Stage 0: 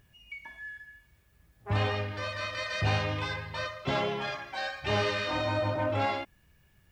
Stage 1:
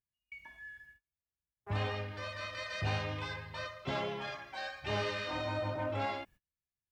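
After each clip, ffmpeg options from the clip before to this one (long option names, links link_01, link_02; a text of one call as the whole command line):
ffmpeg -i in.wav -af "agate=range=-31dB:threshold=-51dB:ratio=16:detection=peak,volume=-6.5dB" out.wav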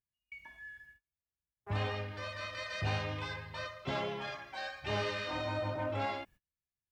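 ffmpeg -i in.wav -af anull out.wav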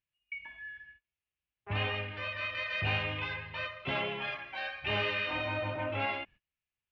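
ffmpeg -i in.wav -af "lowpass=frequency=2700:width_type=q:width=3.5" out.wav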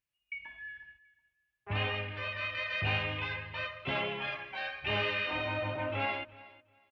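ffmpeg -i in.wav -af "aecho=1:1:366|732:0.1|0.02" out.wav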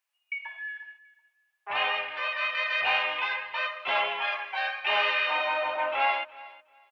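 ffmpeg -i in.wav -af "highpass=frequency=820:width_type=q:width=1.7,volume=6dB" out.wav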